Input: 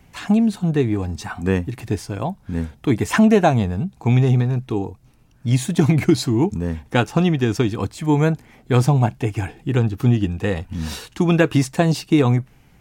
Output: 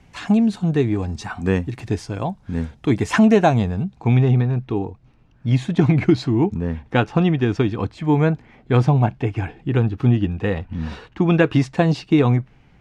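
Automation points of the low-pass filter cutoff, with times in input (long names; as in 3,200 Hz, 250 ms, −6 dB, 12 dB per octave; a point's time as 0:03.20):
0:03.62 7,100 Hz
0:04.22 3,300 Hz
0:10.52 3,300 Hz
0:11.11 1,800 Hz
0:11.35 3,900 Hz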